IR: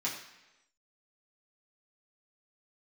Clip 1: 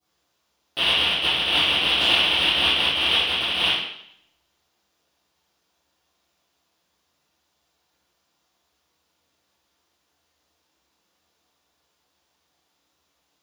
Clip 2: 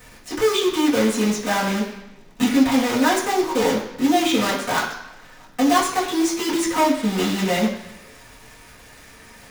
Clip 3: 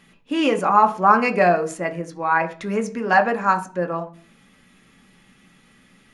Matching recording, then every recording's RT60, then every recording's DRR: 2; 0.70, 1.0, 0.40 seconds; −19.0, −7.0, 5.0 decibels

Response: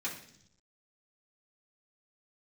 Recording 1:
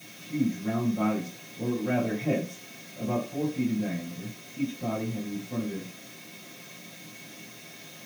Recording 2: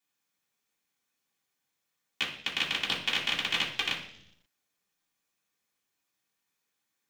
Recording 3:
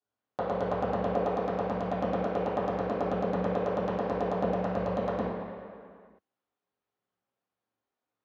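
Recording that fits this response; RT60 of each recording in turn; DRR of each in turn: 2; 0.45, 0.75, 2.1 seconds; −12.0, −7.5, −12.5 decibels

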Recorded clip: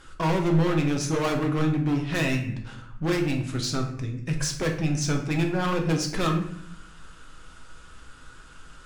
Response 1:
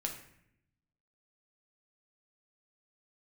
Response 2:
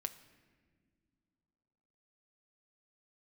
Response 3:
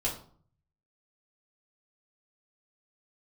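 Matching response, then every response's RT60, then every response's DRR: 1; 0.70 s, non-exponential decay, 0.50 s; 1.5, 8.0, −6.0 decibels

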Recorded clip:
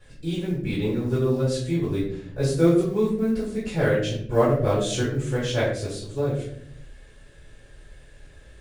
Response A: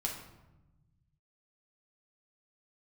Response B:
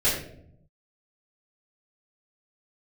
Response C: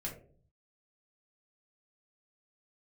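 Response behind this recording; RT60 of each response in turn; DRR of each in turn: B; 1.0, 0.70, 0.50 seconds; −1.5, −9.5, −3.0 decibels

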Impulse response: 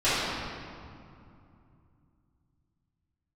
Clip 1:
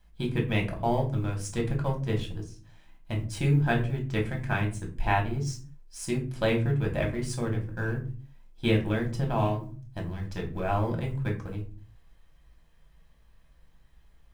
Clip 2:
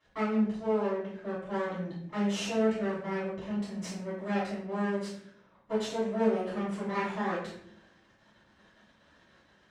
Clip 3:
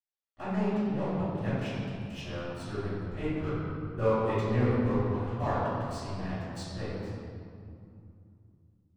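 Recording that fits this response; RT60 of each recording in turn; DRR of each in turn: 3; 0.40, 0.65, 2.6 seconds; 0.0, −12.0, −15.5 decibels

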